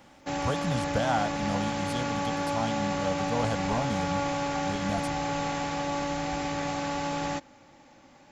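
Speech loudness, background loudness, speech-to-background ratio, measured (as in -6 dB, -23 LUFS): -33.0 LUFS, -30.5 LUFS, -2.5 dB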